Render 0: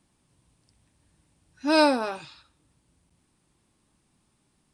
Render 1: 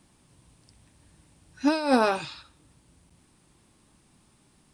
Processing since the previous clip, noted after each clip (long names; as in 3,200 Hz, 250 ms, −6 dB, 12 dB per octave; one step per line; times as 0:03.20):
compressor whose output falls as the input rises −24 dBFS, ratio −0.5
level +3.5 dB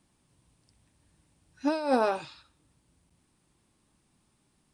dynamic equaliser 590 Hz, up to +7 dB, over −36 dBFS, Q 0.71
level −8.5 dB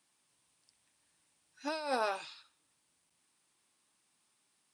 high-pass filter 1,500 Hz 6 dB per octave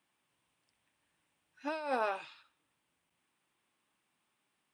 flat-topped bell 6,600 Hz −11 dB